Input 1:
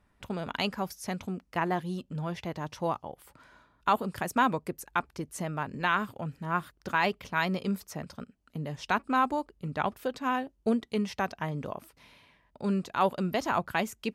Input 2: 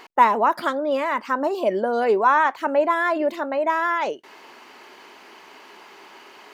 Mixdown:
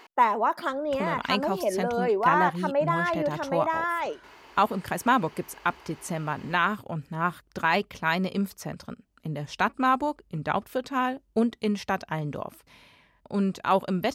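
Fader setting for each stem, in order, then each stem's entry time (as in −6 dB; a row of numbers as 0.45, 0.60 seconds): +3.0, −5.5 decibels; 0.70, 0.00 seconds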